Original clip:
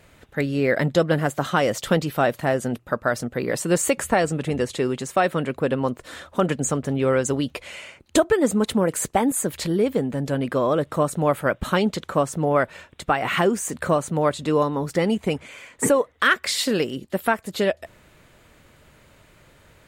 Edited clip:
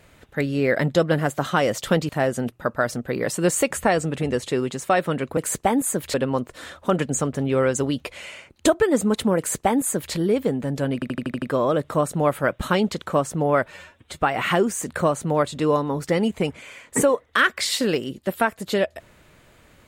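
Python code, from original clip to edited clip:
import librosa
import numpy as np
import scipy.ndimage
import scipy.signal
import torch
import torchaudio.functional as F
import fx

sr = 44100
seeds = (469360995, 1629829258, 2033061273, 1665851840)

y = fx.edit(x, sr, fx.cut(start_s=2.09, length_s=0.27),
    fx.duplicate(start_s=8.87, length_s=0.77, to_s=5.64),
    fx.stutter(start_s=10.44, slice_s=0.08, count=7),
    fx.stretch_span(start_s=12.73, length_s=0.31, factor=1.5), tone=tone)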